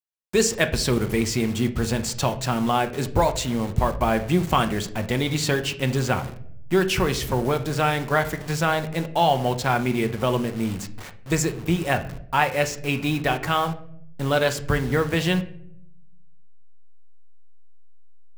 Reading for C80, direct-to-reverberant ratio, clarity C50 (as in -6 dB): 17.5 dB, 7.0 dB, 13.5 dB